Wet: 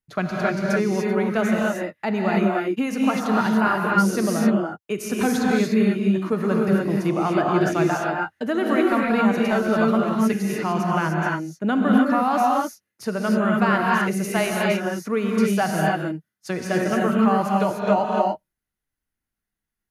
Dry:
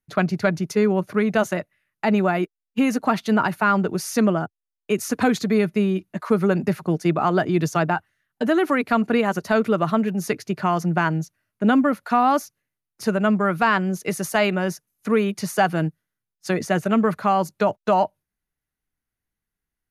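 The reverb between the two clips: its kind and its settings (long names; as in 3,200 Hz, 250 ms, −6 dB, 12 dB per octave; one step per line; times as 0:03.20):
reverb whose tail is shaped and stops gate 320 ms rising, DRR −2.5 dB
level −4.5 dB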